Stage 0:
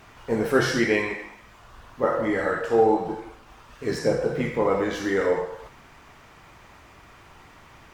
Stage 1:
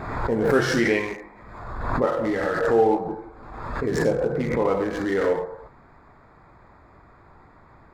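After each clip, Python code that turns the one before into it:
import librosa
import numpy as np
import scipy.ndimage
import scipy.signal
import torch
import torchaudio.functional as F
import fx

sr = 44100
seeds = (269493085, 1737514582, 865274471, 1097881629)

y = fx.wiener(x, sr, points=15)
y = fx.pre_swell(y, sr, db_per_s=43.0)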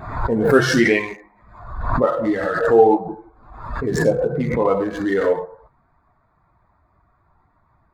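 y = fx.bin_expand(x, sr, power=1.5)
y = y * librosa.db_to_amplitude(7.5)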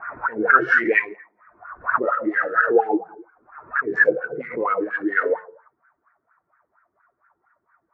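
y = fx.env_lowpass(x, sr, base_hz=2000.0, full_db=-12.0)
y = fx.band_shelf(y, sr, hz=1900.0, db=13.0, octaves=1.3)
y = fx.wah_lfo(y, sr, hz=4.3, low_hz=330.0, high_hz=1600.0, q=5.2)
y = y * librosa.db_to_amplitude(3.0)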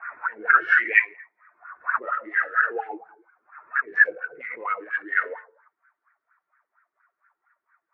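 y = fx.bandpass_q(x, sr, hz=2300.0, q=1.6)
y = y * librosa.db_to_amplitude(3.0)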